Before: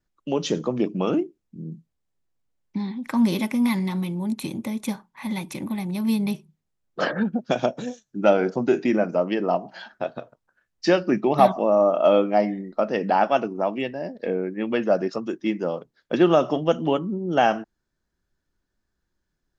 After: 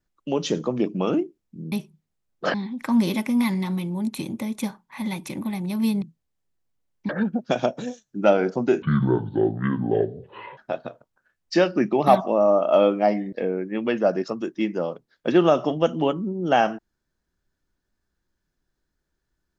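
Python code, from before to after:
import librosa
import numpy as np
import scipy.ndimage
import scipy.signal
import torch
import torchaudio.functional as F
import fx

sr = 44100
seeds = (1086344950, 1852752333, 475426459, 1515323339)

y = fx.edit(x, sr, fx.swap(start_s=1.72, length_s=1.07, other_s=6.27, other_length_s=0.82),
    fx.speed_span(start_s=8.82, length_s=1.07, speed=0.61),
    fx.cut(start_s=12.64, length_s=1.54), tone=tone)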